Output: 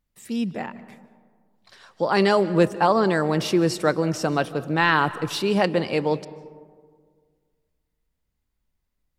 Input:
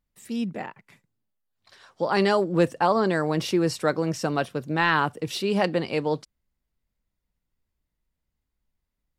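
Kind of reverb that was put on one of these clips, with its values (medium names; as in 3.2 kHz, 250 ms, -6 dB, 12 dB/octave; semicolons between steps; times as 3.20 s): algorithmic reverb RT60 1.8 s, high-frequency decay 0.35×, pre-delay 110 ms, DRR 16 dB; trim +2.5 dB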